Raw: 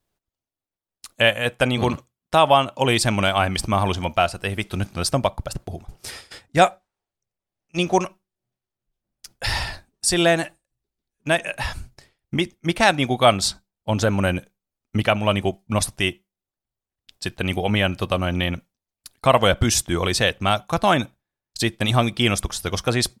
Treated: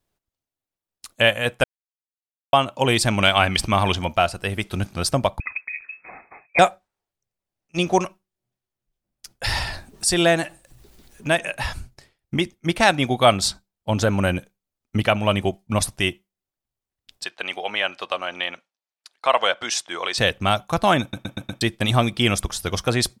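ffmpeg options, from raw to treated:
ffmpeg -i in.wav -filter_complex "[0:a]asettb=1/sr,asplit=3[link_01][link_02][link_03];[link_01]atrim=end=3.234[link_04];[link_02]atrim=start=3.23:end=3.98,asetpts=PTS-STARTPTS,afade=type=in:duration=0.004:curve=qsin,afade=type=out:start_time=0.746:duration=0.004:curve=qsin,equalizer=frequency=2700:width=0.85:gain=6.5[link_05];[link_03]atrim=start=3.976[link_06];[link_04][link_05]acrossfade=duration=0.004:curve1=hsin:curve2=qsin[link_07];[link_07][link_06]acrossfade=duration=0.004:curve1=qsin:curve2=hsin,asettb=1/sr,asplit=3[link_08][link_09][link_10];[link_08]atrim=end=5.404[link_11];[link_09]atrim=start=5.4:end=6.59,asetpts=PTS-STARTPTS,afade=type=in:duration=0.004:curve=qsin,afade=type=out:start_time=1.186:duration=0.004:curve=qsin,lowpass=frequency=2200:width_type=q:width=0.5098,lowpass=frequency=2200:width_type=q:width=0.6013,lowpass=frequency=2200:width_type=q:width=0.9,lowpass=frequency=2200:width_type=q:width=2.563,afreqshift=-2600[link_12];[link_10]atrim=start=6.586[link_13];[link_11][link_12]acrossfade=duration=0.004:curve1=hsin:curve2=qsin[link_14];[link_14][link_13]acrossfade=duration=0.004:curve1=qsin:curve2=hsin,asettb=1/sr,asplit=3[link_15][link_16][link_17];[link_15]atrim=end=9.584[link_18];[link_16]atrim=start=9.58:end=11.5,asetpts=PTS-STARTPTS,afade=type=in:duration=0.004:curve=qsin,afade=type=out:start_time=1.916:duration=0.004:curve=qsin,acompressor=mode=upward:threshold=-23dB:ratio=2.5:attack=3.2:release=140:knee=2.83:detection=peak[link_19];[link_17]atrim=start=11.496[link_20];[link_18][link_19]acrossfade=duration=0.004:curve1=hsin:curve2=qsin[link_21];[link_21][link_20]acrossfade=duration=0.004:curve1=qsin:curve2=hsin,asettb=1/sr,asplit=3[link_22][link_23][link_24];[link_22]atrim=end=17.244[link_25];[link_23]atrim=start=17.24:end=20.18,asetpts=PTS-STARTPTS,afade=type=in:duration=0.004:curve=qsin,afade=type=out:start_time=2.936:duration=0.004:curve=qsin,highpass=670,lowpass=5500[link_26];[link_24]atrim=start=20.176[link_27];[link_25][link_26]acrossfade=duration=0.004:curve1=hsin:curve2=qsin[link_28];[link_28][link_27]acrossfade=duration=0.004:curve1=qsin:curve2=hsin,asplit=8[link_29][link_30][link_31][link_32][link_33][link_34][link_35][link_36];[link_29]atrim=end=1.64,asetpts=PTS-STARTPTS,afade=type=out:start_time=1.636:duration=0.004:curve=hsin[link_37];[link_30]atrim=start=1.64:end=2.53,asetpts=PTS-STARTPTS,volume=0[link_38];[link_31]atrim=start=2.53:end=21.132,asetpts=PTS-STARTPTS,afade=type=in:duration=0.004:curve=hsin[link_39];[link_32]atrim=start=21.008:end=21.132[link_40];[link_33]atrim=start=21.008:end=21.132[link_41];[link_34]atrim=start=21.008:end=21.132[link_42];[link_35]atrim=start=21.008:end=21.132[link_43];[link_36]atrim=start=21.608[link_44];[link_37][link_38][link_39]concat=n=3:v=0:a=1[link_45];[link_45][link_40]acrossfade=duration=0.004:curve1=hsin:curve2=hsin[link_46];[link_46][link_41]acrossfade=duration=0.004:curve1=hsin:curve2=hsin[link_47];[link_47][link_42]acrossfade=duration=0.004:curve1=hsin:curve2=hsin[link_48];[link_48][link_43]acrossfade=duration=0.004:curve1=hsin:curve2=hsin[link_49];[link_49][link_44]acrossfade=duration=0.004:curve1=hsin:curve2=hsin" out.wav

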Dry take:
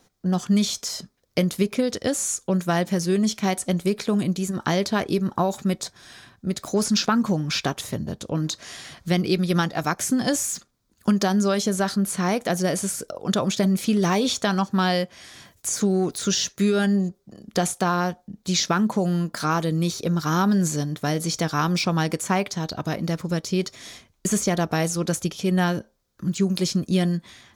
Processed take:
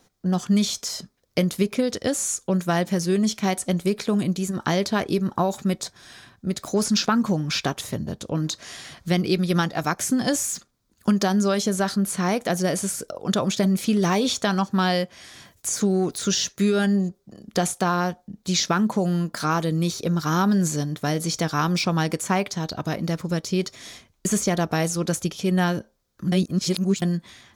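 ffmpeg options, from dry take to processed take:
ffmpeg -i in.wav -filter_complex "[0:a]asplit=3[link_01][link_02][link_03];[link_01]atrim=end=26.322[link_04];[link_02]atrim=start=26.318:end=27.022,asetpts=PTS-STARTPTS,areverse[link_05];[link_03]atrim=start=27.018[link_06];[link_04][link_05]acrossfade=duration=0.004:curve1=hsin:curve2=hsin[link_07];[link_07][link_06]acrossfade=duration=0.004:curve1=hsin:curve2=hsin" out.wav

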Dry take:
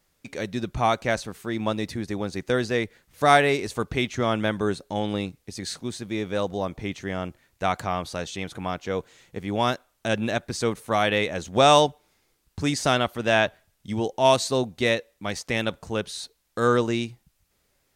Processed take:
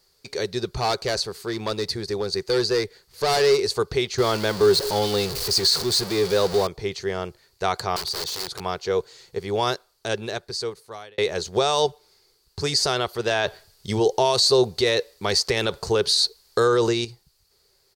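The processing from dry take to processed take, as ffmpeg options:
ffmpeg -i in.wav -filter_complex "[0:a]asettb=1/sr,asplit=3[link_01][link_02][link_03];[link_01]atrim=end=0.784[link_04];[link_02]atrim=start=0.78:end=3.67,asetpts=PTS-STARTPTS,afade=type=in:duration=0.004:curve=qsin,afade=type=out:start_time=2.886:duration=0.004:curve=qsin,asoftclip=type=hard:threshold=-21.5dB[link_05];[link_03]atrim=start=3.666[link_06];[link_04][link_05]acrossfade=duration=0.004:curve1=hsin:curve2=qsin[link_07];[link_07][link_06]acrossfade=duration=0.004:curve1=qsin:curve2=hsin,asettb=1/sr,asplit=3[link_08][link_09][link_10];[link_08]atrim=end=4.184[link_11];[link_09]atrim=start=4.18:end=6.67,asetpts=PTS-STARTPTS,afade=type=in:duration=0.004:curve=qsin,afade=type=out:start_time=2.486:duration=0.004:curve=qsin,aeval=exprs='val(0)+0.5*0.0422*sgn(val(0))':channel_layout=same[link_12];[link_10]atrim=start=6.666[link_13];[link_11][link_12]acrossfade=duration=0.004:curve1=hsin:curve2=qsin[link_14];[link_14][link_13]acrossfade=duration=0.004:curve1=qsin:curve2=hsin,asettb=1/sr,asplit=3[link_15][link_16][link_17];[link_15]atrim=end=7.964[link_18];[link_16]atrim=start=7.96:end=8.6,asetpts=PTS-STARTPTS,afade=type=in:duration=0.004:curve=qsin,afade=type=out:start_time=0.636:duration=0.004:curve=qsin,aeval=exprs='(mod(31.6*val(0)+1,2)-1)/31.6':channel_layout=same[link_19];[link_17]atrim=start=8.596[link_20];[link_18][link_19]acrossfade=duration=0.004:curve1=hsin:curve2=qsin[link_21];[link_21][link_20]acrossfade=duration=0.004:curve1=qsin:curve2=hsin,asplit=4[link_22][link_23][link_24][link_25];[link_22]atrim=end=11.18,asetpts=PTS-STARTPTS,afade=type=out:start_time=9.62:duration=1.56[link_26];[link_23]atrim=start=11.18:end=13.312,asetpts=PTS-STARTPTS,afade=type=in:duration=0.004:curve=hsin[link_27];[link_24]atrim=start=13.308:end=17.052,asetpts=PTS-STARTPTS,volume=7.5dB[link_28];[link_25]atrim=start=17.048[link_29];[link_26][link_27]concat=n=2:v=0:a=1[link_30];[link_30][link_28]acrossfade=duration=0.004:curve1=hsin:curve2=hsin[link_31];[link_31][link_29]acrossfade=duration=0.004:curve1=hsin:curve2=hsin,equalizer=frequency=4500:width_type=o:width=0.35:gain=15,alimiter=limit=-13dB:level=0:latency=1,firequalizer=gain_entry='entry(130,0);entry(280,-11);entry(390,11);entry(570,0);entry(900,3);entry(2400,-1);entry(5100,4)':delay=0.05:min_phase=1" out.wav

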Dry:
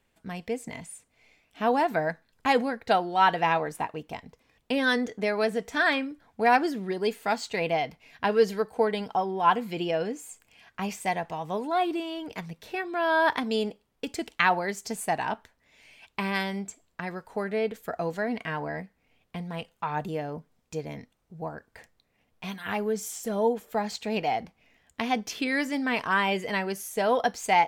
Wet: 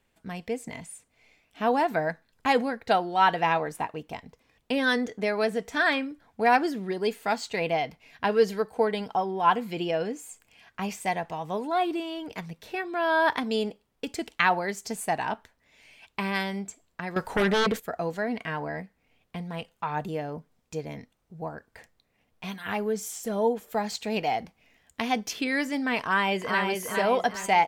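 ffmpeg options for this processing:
ffmpeg -i in.wav -filter_complex "[0:a]asettb=1/sr,asplit=3[link_01][link_02][link_03];[link_01]atrim=end=17.164[link_04];[link_02]atrim=start=17.16:end=17.8,asetpts=PTS-STARTPTS,afade=type=in:duration=0.004:curve=qsin,afade=type=out:start_time=0.636:duration=0.004:curve=qsin,aeval=exprs='0.112*sin(PI/2*2.82*val(0)/0.112)':channel_layout=same[link_05];[link_03]atrim=start=17.796[link_06];[link_04][link_05]acrossfade=duration=0.004:curve1=hsin:curve2=qsin[link_07];[link_07][link_06]acrossfade=duration=0.004:curve1=qsin:curve2=hsin,asettb=1/sr,asplit=3[link_08][link_09][link_10];[link_08]atrim=end=23.624[link_11];[link_09]atrim=start=23.62:end=25.33,asetpts=PTS-STARTPTS,afade=type=in:duration=0.004:curve=qsin,afade=type=out:start_time=1.706:duration=0.004:curve=qsin,highshelf=frequency=5000:gain=4.5[link_12];[link_10]atrim=start=25.326[link_13];[link_11][link_12]acrossfade=duration=0.004:curve1=hsin:curve2=qsin[link_14];[link_14][link_13]acrossfade=duration=0.004:curve1=qsin:curve2=hsin,asplit=2[link_15][link_16];[link_16]afade=type=in:start_time=26:duration=0.01,afade=type=out:start_time=26.64:duration=0.01,aecho=0:1:410|820|1230|1640|2050|2460:0.630957|0.283931|0.127769|0.057496|0.0258732|0.0116429[link_17];[link_15][link_17]amix=inputs=2:normalize=0" out.wav

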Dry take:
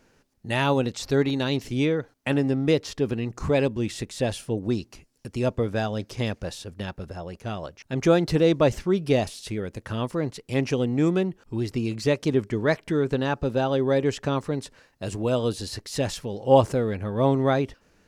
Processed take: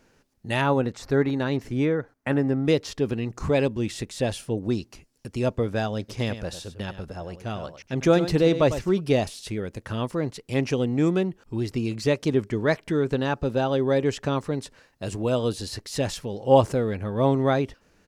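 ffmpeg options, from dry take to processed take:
ffmpeg -i in.wav -filter_complex "[0:a]asettb=1/sr,asplit=3[link_01][link_02][link_03];[link_01]atrim=end=0.614[link_04];[link_02]atrim=start=0.61:end=2.65,asetpts=PTS-STARTPTS,afade=type=in:duration=0.004:curve=qsin,afade=type=out:start_time=2.036:duration=0.004:curve=qsin,highshelf=frequency=2300:width_type=q:width=1.5:gain=-7[link_05];[link_03]atrim=start=2.646[link_06];[link_04][link_05]acrossfade=duration=0.004:curve1=hsin:curve2=qsin[link_07];[link_07][link_06]acrossfade=duration=0.004:curve1=qsin:curve2=hsin,asplit=3[link_08][link_09][link_10];[link_08]afade=type=out:start_time=6.08:duration=0.02[link_11];[link_09]aecho=1:1:101:0.266,afade=type=in:start_time=6.08:duration=0.02,afade=type=out:start_time=8.99:duration=0.02[link_12];[link_10]afade=type=in:start_time=8.99:duration=0.02[link_13];[link_11][link_12][link_13]amix=inputs=3:normalize=0" out.wav

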